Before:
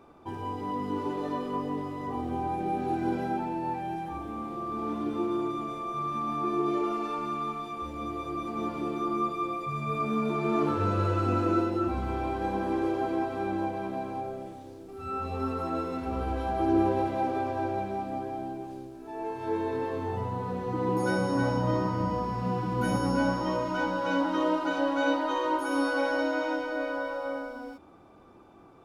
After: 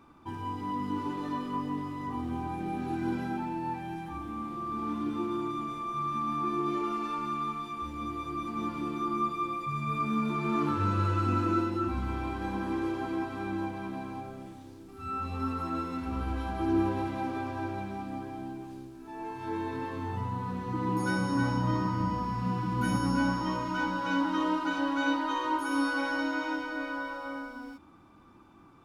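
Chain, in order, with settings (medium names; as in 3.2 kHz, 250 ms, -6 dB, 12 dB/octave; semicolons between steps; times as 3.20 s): high-order bell 540 Hz -10 dB 1.2 oct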